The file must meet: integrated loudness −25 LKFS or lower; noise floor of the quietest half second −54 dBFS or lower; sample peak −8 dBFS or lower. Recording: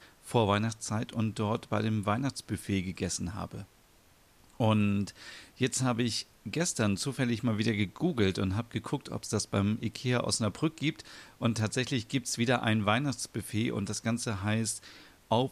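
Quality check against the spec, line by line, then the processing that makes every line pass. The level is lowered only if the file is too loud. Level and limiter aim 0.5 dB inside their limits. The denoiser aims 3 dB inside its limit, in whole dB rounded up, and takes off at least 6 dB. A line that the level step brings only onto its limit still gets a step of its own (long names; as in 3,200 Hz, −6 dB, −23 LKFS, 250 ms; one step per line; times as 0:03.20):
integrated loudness −31.0 LKFS: in spec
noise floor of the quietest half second −62 dBFS: in spec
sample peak −13.5 dBFS: in spec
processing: no processing needed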